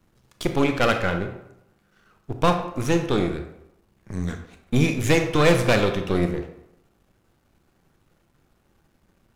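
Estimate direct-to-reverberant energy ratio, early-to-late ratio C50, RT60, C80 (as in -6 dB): 6.0 dB, 8.5 dB, 0.80 s, 11.5 dB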